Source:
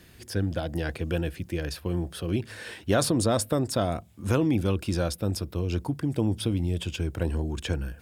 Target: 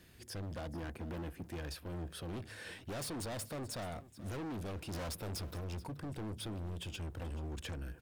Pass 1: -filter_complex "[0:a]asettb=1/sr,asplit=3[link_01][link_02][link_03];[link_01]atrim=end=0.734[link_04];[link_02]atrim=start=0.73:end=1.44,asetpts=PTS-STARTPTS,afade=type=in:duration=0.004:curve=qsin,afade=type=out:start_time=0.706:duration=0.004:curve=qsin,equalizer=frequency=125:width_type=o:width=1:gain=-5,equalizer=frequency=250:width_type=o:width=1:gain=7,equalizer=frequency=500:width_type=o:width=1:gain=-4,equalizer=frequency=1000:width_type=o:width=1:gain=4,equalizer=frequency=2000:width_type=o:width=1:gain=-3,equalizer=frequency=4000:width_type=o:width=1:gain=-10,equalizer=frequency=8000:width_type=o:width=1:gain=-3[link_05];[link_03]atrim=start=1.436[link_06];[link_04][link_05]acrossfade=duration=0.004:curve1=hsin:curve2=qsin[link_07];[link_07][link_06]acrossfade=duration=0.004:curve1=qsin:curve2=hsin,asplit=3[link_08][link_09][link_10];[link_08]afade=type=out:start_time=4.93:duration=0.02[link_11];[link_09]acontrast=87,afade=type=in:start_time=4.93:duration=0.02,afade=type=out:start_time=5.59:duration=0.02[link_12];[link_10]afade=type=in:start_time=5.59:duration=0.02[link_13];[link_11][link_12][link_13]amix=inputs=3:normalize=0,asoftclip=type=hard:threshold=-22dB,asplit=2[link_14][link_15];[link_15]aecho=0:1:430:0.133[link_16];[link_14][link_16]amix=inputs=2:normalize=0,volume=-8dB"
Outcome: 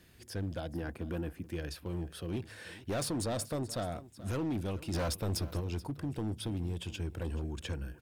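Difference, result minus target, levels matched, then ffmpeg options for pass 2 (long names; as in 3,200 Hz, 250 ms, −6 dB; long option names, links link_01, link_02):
hard clipping: distortion −5 dB
-filter_complex "[0:a]asettb=1/sr,asplit=3[link_01][link_02][link_03];[link_01]atrim=end=0.734[link_04];[link_02]atrim=start=0.73:end=1.44,asetpts=PTS-STARTPTS,afade=type=in:duration=0.004:curve=qsin,afade=type=out:start_time=0.706:duration=0.004:curve=qsin,equalizer=frequency=125:width_type=o:width=1:gain=-5,equalizer=frequency=250:width_type=o:width=1:gain=7,equalizer=frequency=500:width_type=o:width=1:gain=-4,equalizer=frequency=1000:width_type=o:width=1:gain=4,equalizer=frequency=2000:width_type=o:width=1:gain=-3,equalizer=frequency=4000:width_type=o:width=1:gain=-10,equalizer=frequency=8000:width_type=o:width=1:gain=-3[link_05];[link_03]atrim=start=1.436[link_06];[link_04][link_05]acrossfade=duration=0.004:curve1=hsin:curve2=qsin[link_07];[link_07][link_06]acrossfade=duration=0.004:curve1=qsin:curve2=hsin,asplit=3[link_08][link_09][link_10];[link_08]afade=type=out:start_time=4.93:duration=0.02[link_11];[link_09]acontrast=87,afade=type=in:start_time=4.93:duration=0.02,afade=type=out:start_time=5.59:duration=0.02[link_12];[link_10]afade=type=in:start_time=5.59:duration=0.02[link_13];[link_11][link_12][link_13]amix=inputs=3:normalize=0,asoftclip=type=hard:threshold=-31.5dB,asplit=2[link_14][link_15];[link_15]aecho=0:1:430:0.133[link_16];[link_14][link_16]amix=inputs=2:normalize=0,volume=-8dB"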